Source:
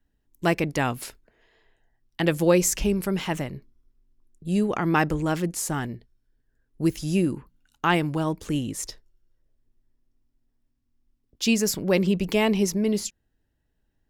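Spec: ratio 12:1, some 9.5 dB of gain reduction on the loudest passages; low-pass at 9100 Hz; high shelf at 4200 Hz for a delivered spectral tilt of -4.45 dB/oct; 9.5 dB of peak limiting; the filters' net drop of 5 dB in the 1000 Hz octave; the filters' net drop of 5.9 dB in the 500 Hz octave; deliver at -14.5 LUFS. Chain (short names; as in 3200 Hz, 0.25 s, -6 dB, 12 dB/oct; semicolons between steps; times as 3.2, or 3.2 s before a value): LPF 9100 Hz; bell 500 Hz -7 dB; bell 1000 Hz -4.5 dB; high shelf 4200 Hz +4 dB; compressor 12:1, threshold -28 dBFS; gain +22 dB; limiter -4.5 dBFS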